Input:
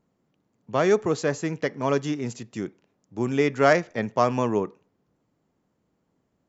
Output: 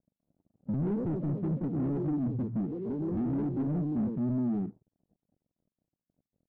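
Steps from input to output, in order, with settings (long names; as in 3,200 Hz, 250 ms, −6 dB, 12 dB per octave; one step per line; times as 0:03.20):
inverse Chebyshev low-pass filter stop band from 1,000 Hz, stop band 60 dB
hum removal 58.98 Hz, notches 2
downward compressor 20 to 1, threshold −41 dBFS, peak gain reduction 18.5 dB
delay with pitch and tempo change per echo 238 ms, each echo +3 semitones, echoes 3, each echo −6 dB
leveller curve on the samples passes 5
every bin expanded away from the loudest bin 1.5 to 1
level +6.5 dB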